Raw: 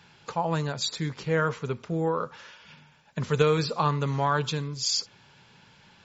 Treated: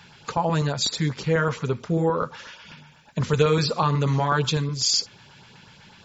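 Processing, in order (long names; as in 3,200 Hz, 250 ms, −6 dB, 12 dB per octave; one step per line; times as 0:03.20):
in parallel at +2 dB: brickwall limiter −20.5 dBFS, peak gain reduction 11 dB
on the sum: auto-filter notch saw up 8.1 Hz 230–3,000 Hz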